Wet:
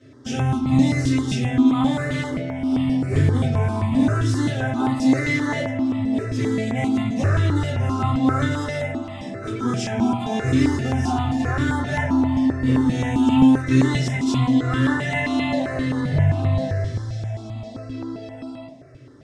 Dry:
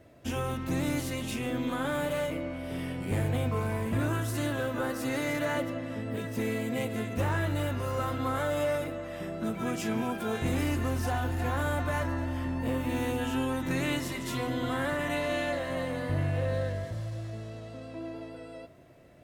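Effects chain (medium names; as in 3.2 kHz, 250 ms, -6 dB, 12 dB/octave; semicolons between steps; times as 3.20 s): cabinet simulation 110–8000 Hz, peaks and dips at 120 Hz +7 dB, 580 Hz -3 dB, 3.5 kHz +4 dB, 5.4 kHz +7 dB; reverberation RT60 0.45 s, pre-delay 4 ms, DRR -9 dB; stepped phaser 7.6 Hz 210–1600 Hz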